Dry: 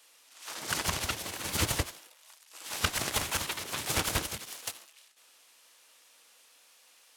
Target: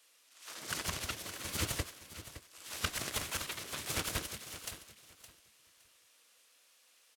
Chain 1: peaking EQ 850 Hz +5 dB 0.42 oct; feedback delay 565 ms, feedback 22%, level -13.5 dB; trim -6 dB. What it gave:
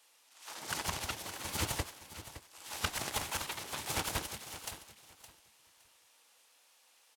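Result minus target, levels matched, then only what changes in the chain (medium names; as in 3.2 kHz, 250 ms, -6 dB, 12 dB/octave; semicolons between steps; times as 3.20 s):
1 kHz band +4.0 dB
change: peaking EQ 850 Hz -5.5 dB 0.42 oct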